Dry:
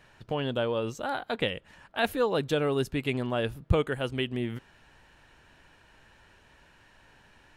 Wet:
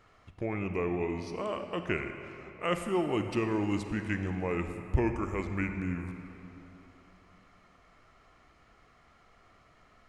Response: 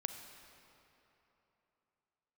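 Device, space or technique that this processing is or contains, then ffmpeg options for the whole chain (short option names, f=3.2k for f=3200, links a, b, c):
slowed and reverbed: -filter_complex "[0:a]asetrate=33075,aresample=44100[a];[1:a]atrim=start_sample=2205[b];[a][b]afir=irnorm=-1:irlink=0,volume=-2.5dB"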